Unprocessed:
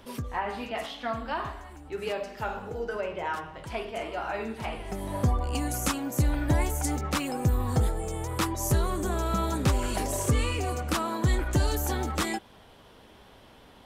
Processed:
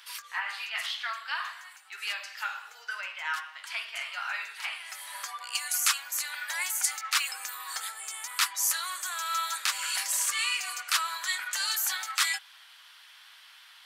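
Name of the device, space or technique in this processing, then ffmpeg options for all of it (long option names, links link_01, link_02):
headphones lying on a table: -af "highpass=frequency=1400:width=0.5412,highpass=frequency=1400:width=1.3066,equalizer=frequency=4500:width_type=o:width=0.27:gain=4,volume=6.5dB"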